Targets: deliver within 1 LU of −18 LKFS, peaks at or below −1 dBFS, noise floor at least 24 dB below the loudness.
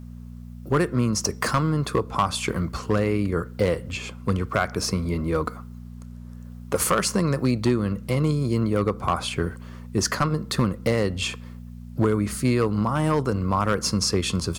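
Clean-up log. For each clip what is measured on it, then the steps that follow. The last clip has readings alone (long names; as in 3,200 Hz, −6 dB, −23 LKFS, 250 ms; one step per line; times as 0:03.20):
share of clipped samples 0.6%; peaks flattened at −13.0 dBFS; mains hum 60 Hz; hum harmonics up to 240 Hz; level of the hum −37 dBFS; integrated loudness −24.5 LKFS; sample peak −13.0 dBFS; target loudness −18.0 LKFS
→ clipped peaks rebuilt −13 dBFS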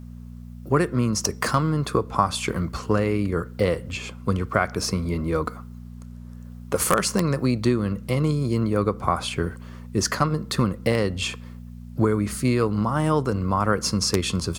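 share of clipped samples 0.0%; mains hum 60 Hz; hum harmonics up to 240 Hz; level of the hum −37 dBFS
→ hum removal 60 Hz, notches 4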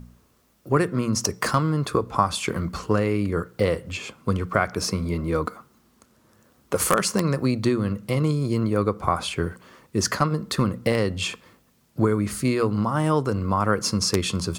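mains hum none found; integrated loudness −24.0 LKFS; sample peak −4.0 dBFS; target loudness −18.0 LKFS
→ level +6 dB
brickwall limiter −1 dBFS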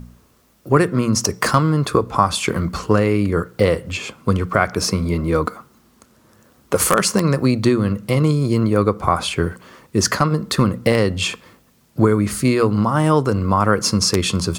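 integrated loudness −18.5 LKFS; sample peak −1.0 dBFS; background noise floor −56 dBFS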